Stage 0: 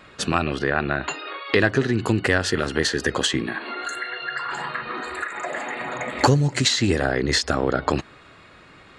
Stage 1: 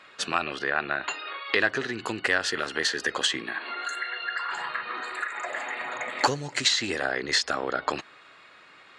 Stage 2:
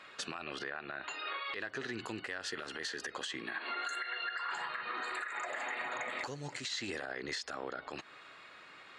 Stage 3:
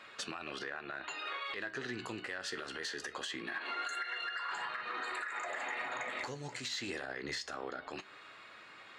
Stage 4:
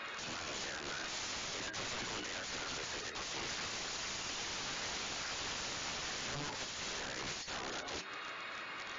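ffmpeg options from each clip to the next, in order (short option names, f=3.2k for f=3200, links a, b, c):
-af "highpass=f=1.1k:p=1,highshelf=f=8.7k:g=-10.5"
-af "acompressor=threshold=-32dB:ratio=6,alimiter=level_in=2dB:limit=-24dB:level=0:latency=1:release=63,volume=-2dB,volume=-2dB"
-filter_complex "[0:a]asplit=2[a][b];[b]asoftclip=type=tanh:threshold=-38.5dB,volume=-11.5dB[c];[a][c]amix=inputs=2:normalize=0,flanger=delay=8.9:depth=7.4:regen=68:speed=0.23:shape=sinusoidal,volume=2.5dB"
-af "acompressor=threshold=-43dB:ratio=2,aeval=exprs='(mod(158*val(0)+1,2)-1)/158':c=same,volume=9.5dB" -ar 16000 -c:a libmp3lame -b:a 32k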